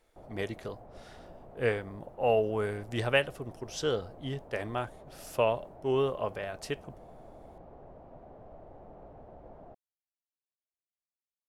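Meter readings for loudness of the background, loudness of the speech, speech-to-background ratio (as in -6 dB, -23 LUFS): -52.0 LUFS, -32.5 LUFS, 19.5 dB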